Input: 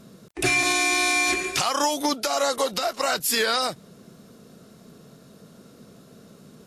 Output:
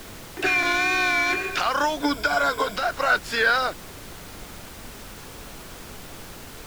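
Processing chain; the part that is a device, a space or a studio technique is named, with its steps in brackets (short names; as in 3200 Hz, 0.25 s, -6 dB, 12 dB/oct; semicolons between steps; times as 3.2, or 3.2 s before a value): horn gramophone (BPF 280–3600 Hz; bell 1500 Hz +11.5 dB 0.27 oct; wow and flutter; pink noise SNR 14 dB); 2.02–2.76 ripple EQ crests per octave 1.7, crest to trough 12 dB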